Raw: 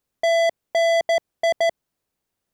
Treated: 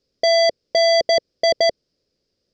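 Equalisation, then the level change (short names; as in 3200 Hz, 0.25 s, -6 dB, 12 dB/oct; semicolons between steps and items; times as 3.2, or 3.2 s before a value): synth low-pass 5000 Hz, resonance Q 8.8; resonant low shelf 650 Hz +7.5 dB, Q 3; 0.0 dB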